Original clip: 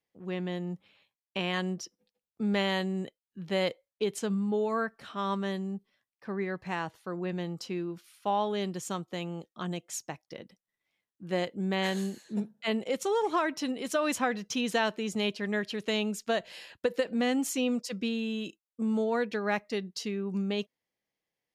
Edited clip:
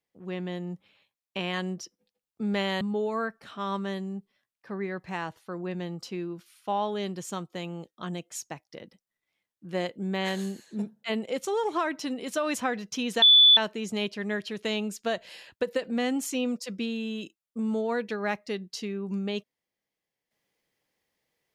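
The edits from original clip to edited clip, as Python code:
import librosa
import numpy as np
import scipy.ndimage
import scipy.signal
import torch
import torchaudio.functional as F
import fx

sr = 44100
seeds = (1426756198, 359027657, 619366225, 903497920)

y = fx.edit(x, sr, fx.cut(start_s=2.81, length_s=1.58),
    fx.insert_tone(at_s=14.8, length_s=0.35, hz=3470.0, db=-12.5), tone=tone)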